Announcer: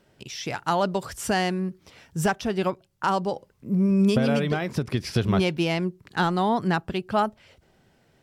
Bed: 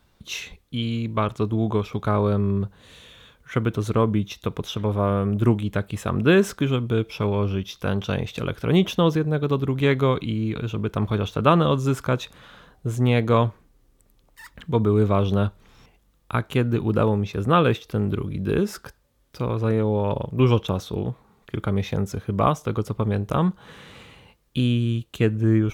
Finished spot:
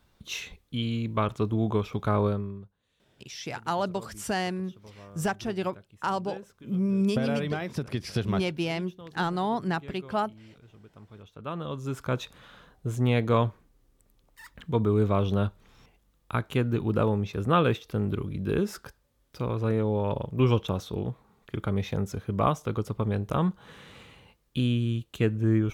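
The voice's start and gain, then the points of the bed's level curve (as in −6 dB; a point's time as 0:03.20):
3.00 s, −5.0 dB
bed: 0:02.26 −3.5 dB
0:02.77 −26.5 dB
0:11.10 −26.5 dB
0:12.19 −4.5 dB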